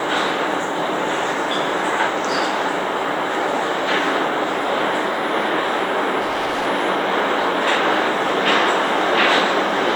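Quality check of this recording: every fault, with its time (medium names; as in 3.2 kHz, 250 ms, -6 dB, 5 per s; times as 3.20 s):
6.20–6.67 s: clipped -18 dBFS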